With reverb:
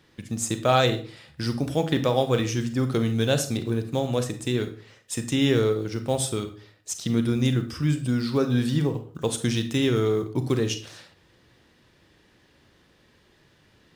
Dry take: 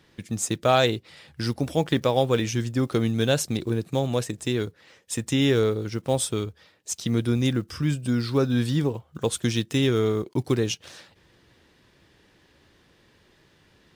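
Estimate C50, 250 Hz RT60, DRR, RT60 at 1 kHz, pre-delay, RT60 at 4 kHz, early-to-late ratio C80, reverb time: 11.5 dB, 0.50 s, 8.0 dB, 0.40 s, 31 ms, 0.35 s, 16.0 dB, 0.40 s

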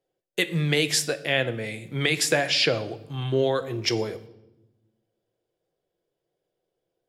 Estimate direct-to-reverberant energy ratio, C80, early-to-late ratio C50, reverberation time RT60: 10.0 dB, 18.0 dB, 16.0 dB, 0.95 s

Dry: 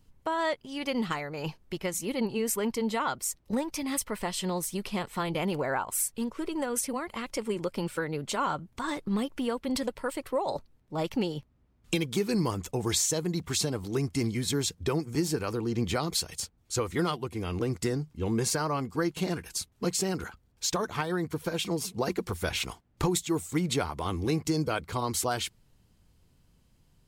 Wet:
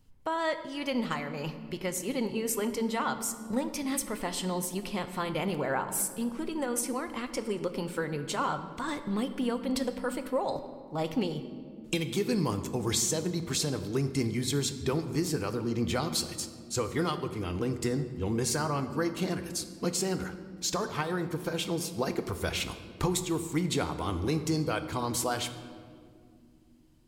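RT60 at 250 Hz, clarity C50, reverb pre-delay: 4.0 s, 11.0 dB, 4 ms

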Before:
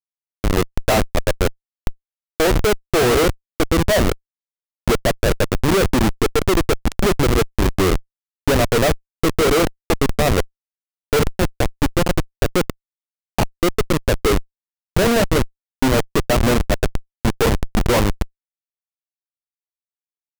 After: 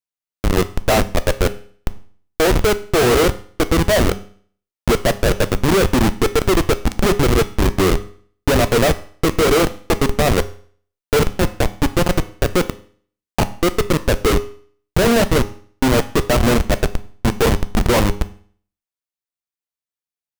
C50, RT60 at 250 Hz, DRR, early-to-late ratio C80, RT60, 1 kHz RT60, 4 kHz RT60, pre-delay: 16.5 dB, 0.50 s, 11.5 dB, 20.0 dB, 0.50 s, 0.50 s, 0.50 s, 10 ms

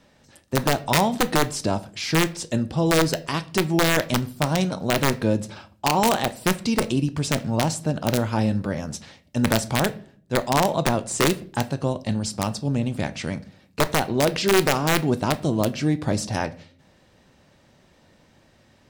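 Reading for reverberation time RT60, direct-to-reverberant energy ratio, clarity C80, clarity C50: 0.50 s, 11.5 dB, 23.5 dB, 19.0 dB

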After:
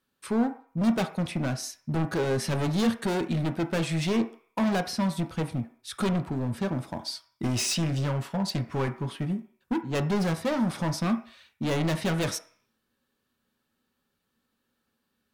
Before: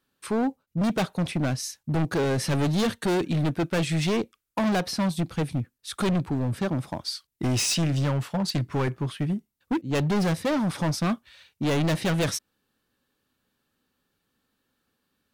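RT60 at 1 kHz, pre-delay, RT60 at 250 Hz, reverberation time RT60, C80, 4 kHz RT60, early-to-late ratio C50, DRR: 0.55 s, 3 ms, 0.35 s, 0.50 s, 17.0 dB, 0.55 s, 12.5 dB, 7.0 dB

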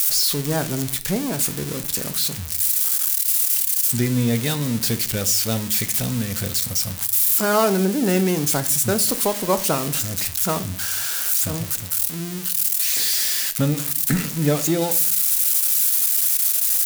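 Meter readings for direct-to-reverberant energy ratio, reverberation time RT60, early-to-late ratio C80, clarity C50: 9.5 dB, 0.45 s, 22.0 dB, 17.0 dB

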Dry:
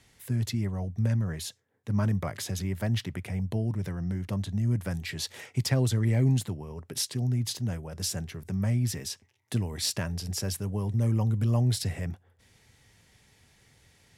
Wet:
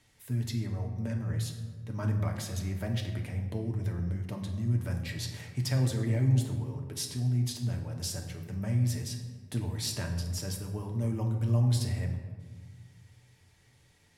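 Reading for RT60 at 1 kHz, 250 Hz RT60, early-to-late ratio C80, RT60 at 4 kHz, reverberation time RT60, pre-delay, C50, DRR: 1.5 s, 2.0 s, 8.5 dB, 0.85 s, 1.6 s, 3 ms, 6.5 dB, 1.5 dB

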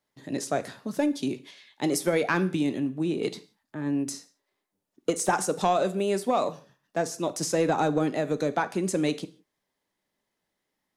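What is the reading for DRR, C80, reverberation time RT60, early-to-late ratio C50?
12.0 dB, 21.5 dB, no single decay rate, 17.5 dB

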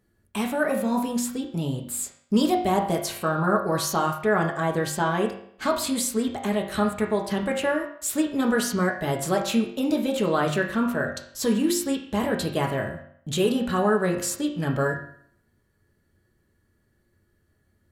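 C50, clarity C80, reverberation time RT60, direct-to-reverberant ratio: 7.0 dB, 10.0 dB, 0.65 s, 0.5 dB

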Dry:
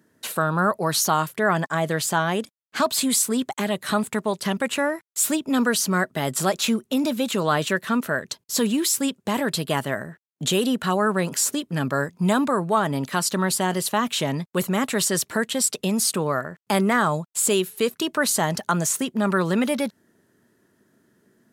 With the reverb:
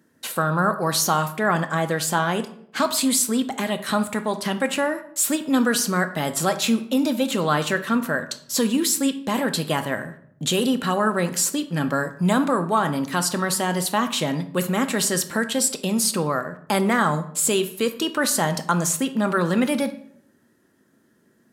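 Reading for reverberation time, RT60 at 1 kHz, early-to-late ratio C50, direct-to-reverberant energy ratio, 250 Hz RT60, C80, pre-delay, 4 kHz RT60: 0.65 s, 0.65 s, 13.0 dB, 7.5 dB, 0.80 s, 16.5 dB, 4 ms, 0.45 s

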